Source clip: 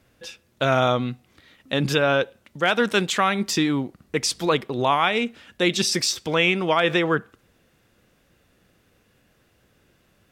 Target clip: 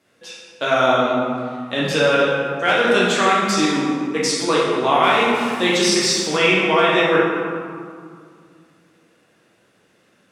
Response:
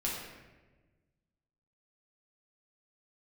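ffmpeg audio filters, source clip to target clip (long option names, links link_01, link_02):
-filter_complex "[0:a]asettb=1/sr,asplit=3[link_01][link_02][link_03];[link_01]atrim=end=5.034[link_04];[link_02]atrim=start=5.03:end=6.37,asetpts=PTS-STARTPTS,afade=type=in:duration=0.004:curve=qsin,afade=type=out:start_time=1.336:duration=0.004:curve=qsin,aeval=exprs='val(0)+0.5*0.0224*sgn(val(0))':channel_layout=same[link_05];[link_03]atrim=start=6.366[link_06];[link_04][link_05]acrossfade=duration=0.004:curve1=hsin:curve2=qsin[link_07];[link_07][link_06]acrossfade=duration=0.004:curve1=qsin:curve2=hsin,highpass=240[link_08];[1:a]atrim=start_sample=2205,asetrate=22491,aresample=44100[link_09];[link_08][link_09]afir=irnorm=-1:irlink=0,volume=-4dB"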